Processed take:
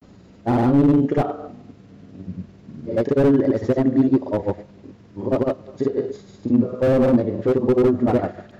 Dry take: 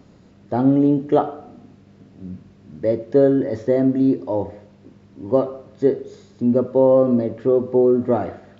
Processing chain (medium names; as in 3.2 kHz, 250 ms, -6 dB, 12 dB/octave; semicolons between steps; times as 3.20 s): granulator 100 ms, pitch spread up and down by 0 st; slew-rate limiter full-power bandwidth 55 Hz; trim +4 dB